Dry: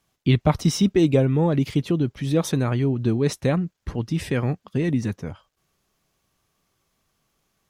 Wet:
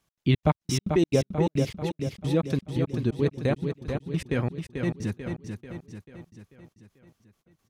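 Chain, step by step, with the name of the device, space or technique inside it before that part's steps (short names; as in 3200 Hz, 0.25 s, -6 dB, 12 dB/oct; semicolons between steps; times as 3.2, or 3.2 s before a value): trance gate with a delay (step gate "x.xx.x.." 174 bpm -60 dB; feedback echo 0.44 s, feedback 52%, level -6.5 dB); gain -3.5 dB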